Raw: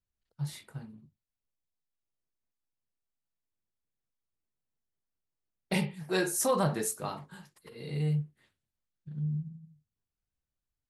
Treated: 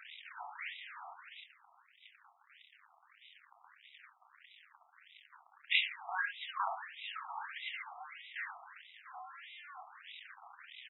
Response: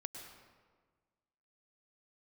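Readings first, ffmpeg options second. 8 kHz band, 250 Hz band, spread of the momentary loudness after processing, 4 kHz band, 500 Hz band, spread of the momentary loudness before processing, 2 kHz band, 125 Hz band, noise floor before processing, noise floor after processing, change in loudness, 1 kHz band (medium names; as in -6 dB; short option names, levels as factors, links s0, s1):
under -40 dB, under -40 dB, 22 LU, +4.0 dB, -22.5 dB, 18 LU, +3.5 dB, under -40 dB, under -85 dBFS, -69 dBFS, -8.5 dB, -2.0 dB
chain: -filter_complex "[0:a]aeval=exprs='val(0)+0.5*0.01*sgn(val(0))':c=same,equalizer=f=1400:t=o:w=1.6:g=-3.5,asplit=2[s0][s1];[s1]aecho=0:1:27|74:0.376|0.2[s2];[s0][s2]amix=inputs=2:normalize=0,acrossover=split=430|3000[s3][s4][s5];[s4]acompressor=threshold=0.00447:ratio=2[s6];[s3][s6][s5]amix=inputs=3:normalize=0,asplit=2[s7][s8];[s8]adelay=500,lowpass=f=4700:p=1,volume=0.1,asplit=2[s9][s10];[s10]adelay=500,lowpass=f=4700:p=1,volume=0.53,asplit=2[s11][s12];[s12]adelay=500,lowpass=f=4700:p=1,volume=0.53,asplit=2[s13][s14];[s14]adelay=500,lowpass=f=4700:p=1,volume=0.53[s15];[s9][s11][s13][s15]amix=inputs=4:normalize=0[s16];[s7][s16]amix=inputs=2:normalize=0,afftfilt=real='re*between(b*sr/1024,930*pow(2800/930,0.5+0.5*sin(2*PI*1.6*pts/sr))/1.41,930*pow(2800/930,0.5+0.5*sin(2*PI*1.6*pts/sr))*1.41)':imag='im*between(b*sr/1024,930*pow(2800/930,0.5+0.5*sin(2*PI*1.6*pts/sr))/1.41,930*pow(2800/930,0.5+0.5*sin(2*PI*1.6*pts/sr))*1.41)':win_size=1024:overlap=0.75,volume=3.98"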